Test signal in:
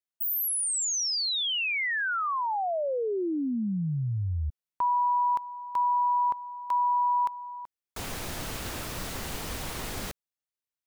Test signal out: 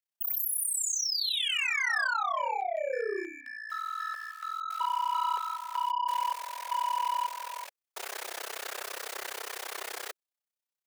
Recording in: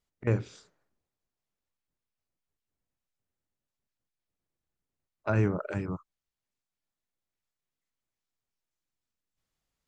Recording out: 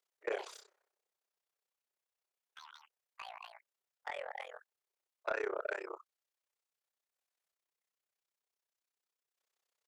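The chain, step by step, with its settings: in parallel at -0.5 dB: limiter -25 dBFS; on the sum: steep high-pass 380 Hz 72 dB/oct; AM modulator 32 Hz, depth 100%; dynamic EQ 1700 Hz, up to +6 dB, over -45 dBFS, Q 2; soft clip -21.5 dBFS; echoes that change speed 0.117 s, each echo +5 st, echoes 3, each echo -6 dB; gain -3 dB

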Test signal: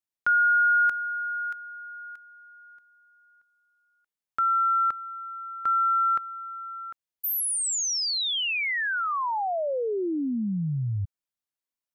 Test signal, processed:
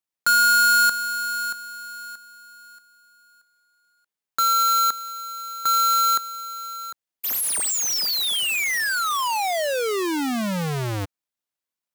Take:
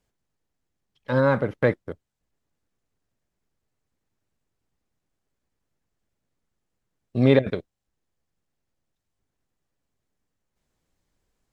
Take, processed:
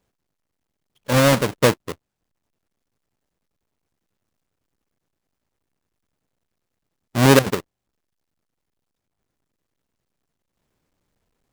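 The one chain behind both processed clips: half-waves squared off; low shelf 92 Hz -8.5 dB; gain +1 dB

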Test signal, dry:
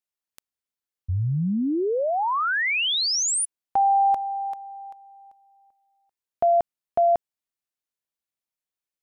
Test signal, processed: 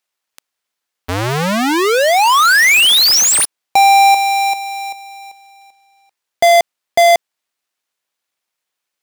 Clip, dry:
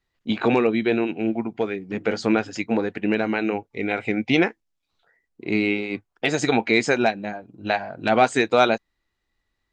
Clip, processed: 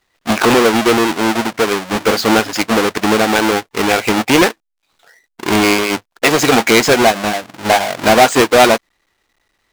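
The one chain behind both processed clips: half-waves squared off; overdrive pedal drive 16 dB, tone 6800 Hz, clips at -4 dBFS; gain +3 dB

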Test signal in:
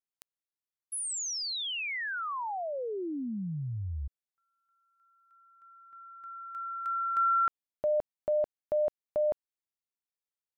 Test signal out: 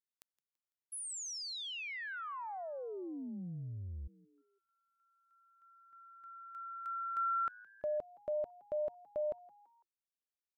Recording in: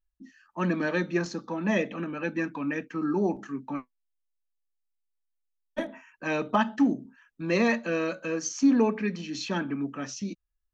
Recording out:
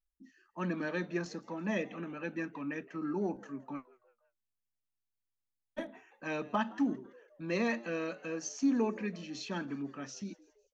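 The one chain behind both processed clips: frequency-shifting echo 0.167 s, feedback 48%, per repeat +110 Hz, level -22.5 dB; gain -8 dB

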